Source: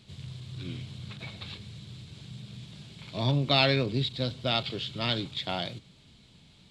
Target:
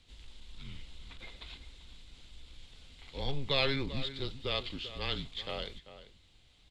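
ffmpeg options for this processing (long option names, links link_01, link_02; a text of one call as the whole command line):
ffmpeg -i in.wav -filter_complex "[0:a]afreqshift=-140,asplit=2[link_01][link_02];[link_02]adelay=390.7,volume=-13dB,highshelf=frequency=4000:gain=-8.79[link_03];[link_01][link_03]amix=inputs=2:normalize=0,volume=-6dB" out.wav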